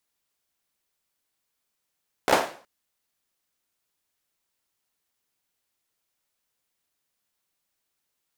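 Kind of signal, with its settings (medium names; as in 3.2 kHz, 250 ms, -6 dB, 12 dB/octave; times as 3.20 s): hand clap length 0.37 s, apart 15 ms, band 640 Hz, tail 0.43 s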